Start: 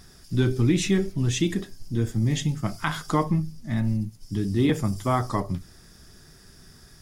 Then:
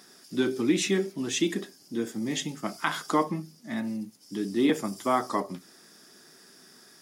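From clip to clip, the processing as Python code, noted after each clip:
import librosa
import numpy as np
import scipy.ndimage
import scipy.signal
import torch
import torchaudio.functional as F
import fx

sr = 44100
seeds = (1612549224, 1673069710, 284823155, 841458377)

y = scipy.signal.sosfilt(scipy.signal.butter(4, 230.0, 'highpass', fs=sr, output='sos'), x)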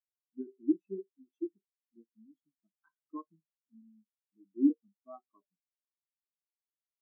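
y = fx.spectral_expand(x, sr, expansion=4.0)
y = y * 10.0 ** (-4.0 / 20.0)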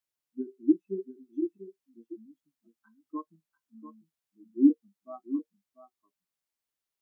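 y = x + 10.0 ** (-11.5 / 20.0) * np.pad(x, (int(692 * sr / 1000.0), 0))[:len(x)]
y = y * 10.0 ** (5.5 / 20.0)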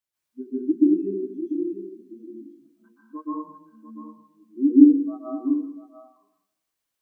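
y = fx.rev_plate(x, sr, seeds[0], rt60_s=0.81, hf_ratio=0.95, predelay_ms=115, drr_db=-8.0)
y = y * 10.0 ** (-1.0 / 20.0)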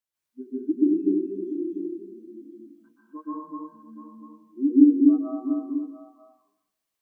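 y = x + 10.0 ** (-3.5 / 20.0) * np.pad(x, (int(248 * sr / 1000.0), 0))[:len(x)]
y = y * 10.0 ** (-3.0 / 20.0)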